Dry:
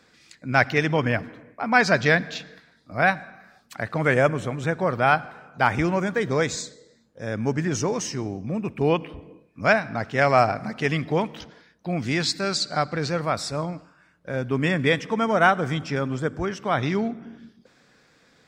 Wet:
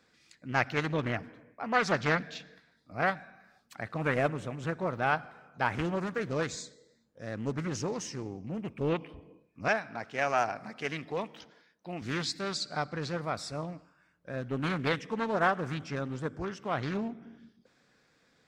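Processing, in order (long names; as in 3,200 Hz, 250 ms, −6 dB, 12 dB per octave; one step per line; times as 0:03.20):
0:09.68–0:12.02: high-pass filter 290 Hz 6 dB per octave
highs frequency-modulated by the lows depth 0.45 ms
level −9 dB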